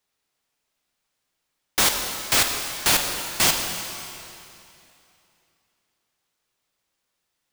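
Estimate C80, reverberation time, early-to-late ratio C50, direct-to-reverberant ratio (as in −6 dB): 5.5 dB, 2.8 s, 4.5 dB, 3.0 dB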